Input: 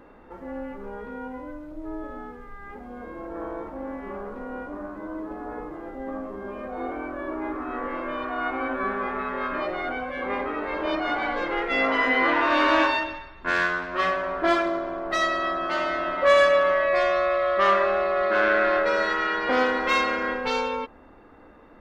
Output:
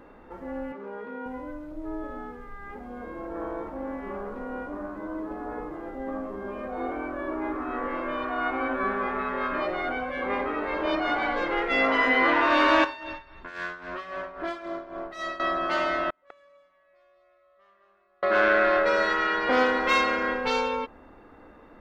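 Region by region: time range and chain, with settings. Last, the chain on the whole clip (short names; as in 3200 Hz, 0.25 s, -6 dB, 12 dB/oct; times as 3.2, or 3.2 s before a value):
0.72–1.26 BPF 220–4200 Hz + bell 770 Hz -3.5 dB 0.24 oct
12.84–15.4 compressor 3:1, threshold -30 dBFS + tremolo 3.7 Hz, depth 72%
16.1–18.23 flipped gate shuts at -23 dBFS, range -42 dB + echo 0.201 s -5 dB
whole clip: dry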